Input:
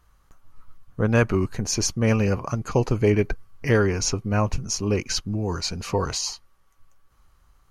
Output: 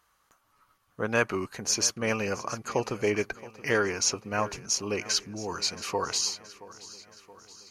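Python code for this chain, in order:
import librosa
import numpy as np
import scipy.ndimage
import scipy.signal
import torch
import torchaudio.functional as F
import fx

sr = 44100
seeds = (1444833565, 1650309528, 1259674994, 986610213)

p1 = fx.highpass(x, sr, hz=740.0, slope=6)
y = p1 + fx.echo_feedback(p1, sr, ms=674, feedback_pct=58, wet_db=-18, dry=0)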